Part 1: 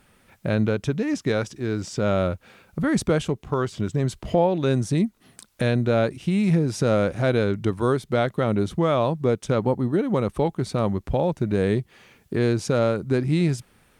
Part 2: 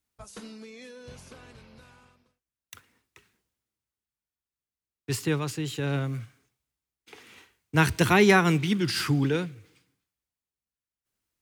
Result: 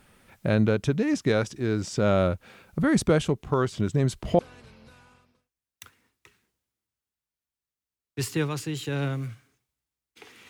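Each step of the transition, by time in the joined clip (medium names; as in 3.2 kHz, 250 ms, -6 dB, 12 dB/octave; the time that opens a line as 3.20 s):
part 1
4.39 s: go over to part 2 from 1.30 s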